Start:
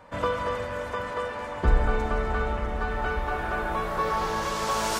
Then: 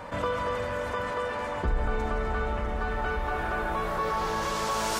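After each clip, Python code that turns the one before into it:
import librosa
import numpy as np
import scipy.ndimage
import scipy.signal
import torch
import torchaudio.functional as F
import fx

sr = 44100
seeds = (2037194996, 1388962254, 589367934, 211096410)

y = fx.env_flatten(x, sr, amount_pct=50)
y = y * librosa.db_to_amplitude(-7.5)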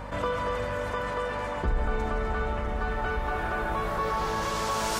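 y = fx.add_hum(x, sr, base_hz=50, snr_db=13)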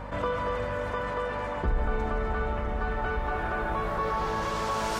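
y = fx.high_shelf(x, sr, hz=4500.0, db=-9.0)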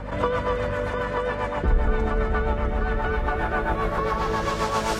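y = fx.rotary(x, sr, hz=7.5)
y = y * librosa.db_to_amplitude(7.5)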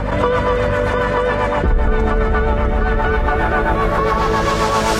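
y = fx.env_flatten(x, sr, amount_pct=50)
y = y * librosa.db_to_amplitude(4.0)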